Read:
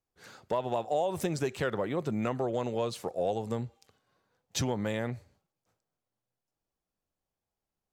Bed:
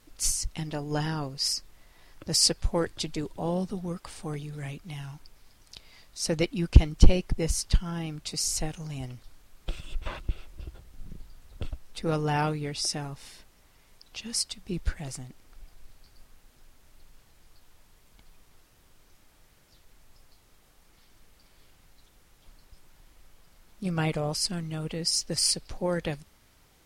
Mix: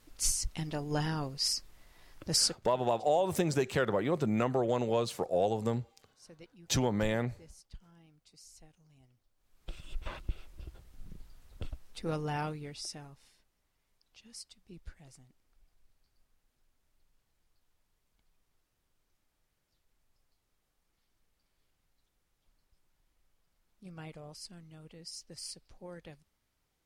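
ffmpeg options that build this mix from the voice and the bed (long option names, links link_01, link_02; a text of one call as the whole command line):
ffmpeg -i stem1.wav -i stem2.wav -filter_complex "[0:a]adelay=2150,volume=1.5dB[link_01];[1:a]volume=18.5dB,afade=type=out:start_time=2.36:duration=0.24:silence=0.0630957,afade=type=in:start_time=9.35:duration=0.59:silence=0.0841395,afade=type=out:start_time=11.82:duration=1.55:silence=0.223872[link_02];[link_01][link_02]amix=inputs=2:normalize=0" out.wav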